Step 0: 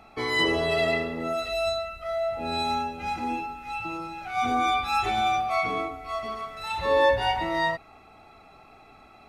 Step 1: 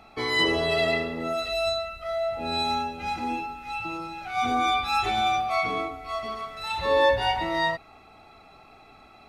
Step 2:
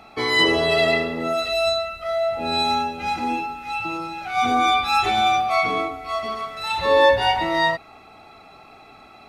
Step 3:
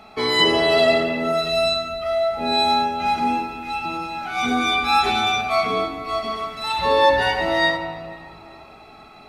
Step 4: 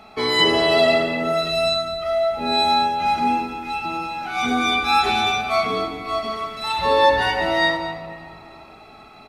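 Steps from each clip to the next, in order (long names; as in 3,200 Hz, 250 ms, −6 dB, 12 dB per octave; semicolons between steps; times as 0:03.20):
parametric band 4,000 Hz +3.5 dB 0.81 octaves
low-shelf EQ 68 Hz −9.5 dB; level +5.5 dB
rectangular room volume 3,300 cubic metres, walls mixed, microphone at 1.4 metres
single-tap delay 213 ms −13 dB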